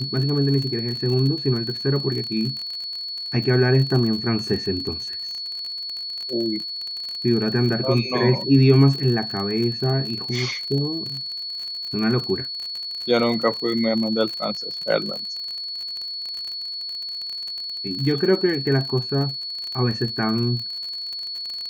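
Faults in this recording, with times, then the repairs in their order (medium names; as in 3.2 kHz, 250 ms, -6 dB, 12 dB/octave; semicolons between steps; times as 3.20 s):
crackle 40 per s -27 dBFS
whine 4.4 kHz -28 dBFS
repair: de-click; band-stop 4.4 kHz, Q 30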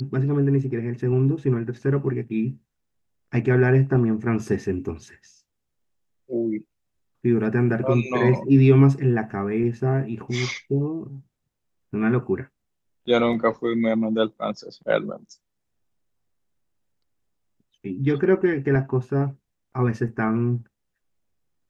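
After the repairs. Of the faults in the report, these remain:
nothing left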